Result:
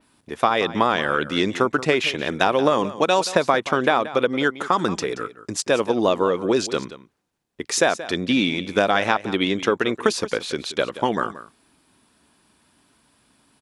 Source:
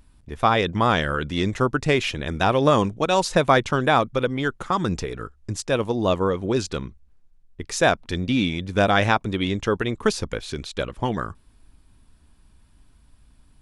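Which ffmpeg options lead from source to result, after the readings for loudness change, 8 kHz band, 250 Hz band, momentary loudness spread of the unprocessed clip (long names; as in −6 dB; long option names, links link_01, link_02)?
+1.0 dB, +4.0 dB, +0.5 dB, 12 LU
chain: -af "highpass=260,adynamicequalizer=threshold=0.00562:dfrequency=8000:dqfactor=0.8:tfrequency=8000:tqfactor=0.8:attack=5:release=100:ratio=0.375:range=3:mode=cutabove:tftype=bell,acompressor=threshold=-20dB:ratio=6,aecho=1:1:178:0.178,volume=6dB"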